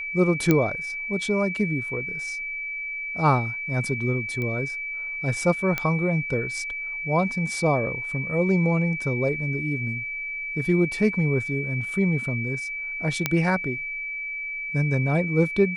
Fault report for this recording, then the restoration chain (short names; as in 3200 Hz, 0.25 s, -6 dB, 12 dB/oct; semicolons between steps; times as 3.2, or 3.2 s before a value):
tone 2300 Hz -29 dBFS
0.51 pop -6 dBFS
4.42 pop -19 dBFS
5.78 pop -11 dBFS
13.26 pop -6 dBFS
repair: de-click; notch 2300 Hz, Q 30